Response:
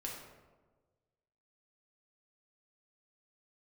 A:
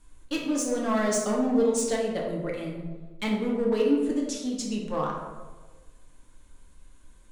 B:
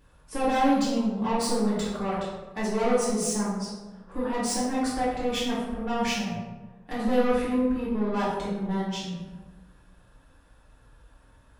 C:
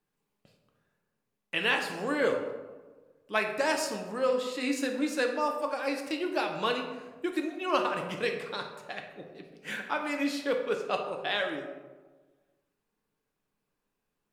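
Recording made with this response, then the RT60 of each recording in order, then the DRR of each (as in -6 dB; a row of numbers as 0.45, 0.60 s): A; 1.4, 1.4, 1.4 s; -2.5, -10.5, 2.5 dB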